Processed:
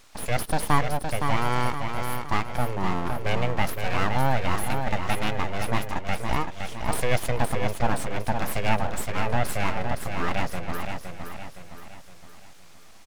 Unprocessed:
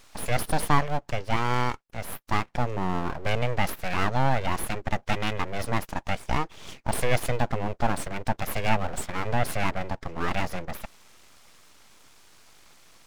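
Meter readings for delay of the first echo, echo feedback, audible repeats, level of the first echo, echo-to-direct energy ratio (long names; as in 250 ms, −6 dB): 515 ms, 46%, 5, −6.0 dB, −5.0 dB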